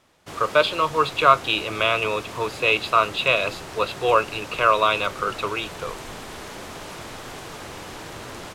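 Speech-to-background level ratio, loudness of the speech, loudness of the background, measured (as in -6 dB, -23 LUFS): 15.0 dB, -21.5 LUFS, -36.5 LUFS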